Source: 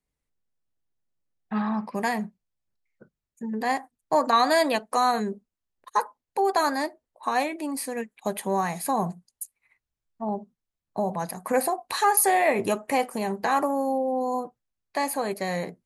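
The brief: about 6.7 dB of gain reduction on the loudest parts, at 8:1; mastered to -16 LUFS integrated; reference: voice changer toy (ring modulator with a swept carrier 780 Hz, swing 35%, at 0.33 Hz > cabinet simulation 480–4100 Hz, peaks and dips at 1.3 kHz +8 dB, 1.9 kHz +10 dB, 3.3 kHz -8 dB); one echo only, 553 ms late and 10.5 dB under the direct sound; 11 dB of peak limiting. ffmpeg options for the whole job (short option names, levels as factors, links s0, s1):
-af "acompressor=threshold=0.0708:ratio=8,alimiter=limit=0.0631:level=0:latency=1,aecho=1:1:553:0.299,aeval=exprs='val(0)*sin(2*PI*780*n/s+780*0.35/0.33*sin(2*PI*0.33*n/s))':c=same,highpass=480,equalizer=f=1300:t=q:w=4:g=8,equalizer=f=1900:t=q:w=4:g=10,equalizer=f=3300:t=q:w=4:g=-8,lowpass=f=4100:w=0.5412,lowpass=f=4100:w=1.3066,volume=6.68"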